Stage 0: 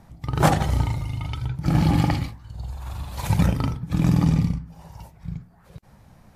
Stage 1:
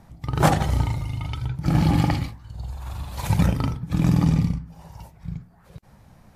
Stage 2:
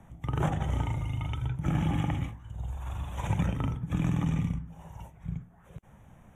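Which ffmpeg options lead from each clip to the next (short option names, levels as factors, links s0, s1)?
-af anull
-filter_complex "[0:a]acrossover=split=190|1000|7700[s0][s1][s2][s3];[s0]acompressor=threshold=0.0631:ratio=4[s4];[s1]acompressor=threshold=0.0282:ratio=4[s5];[s2]acompressor=threshold=0.0141:ratio=4[s6];[s3]acompressor=threshold=0.00112:ratio=4[s7];[s4][s5][s6][s7]amix=inputs=4:normalize=0,asuperstop=centerf=4600:order=8:qfactor=2,highshelf=f=12000:g=-8.5,volume=0.708"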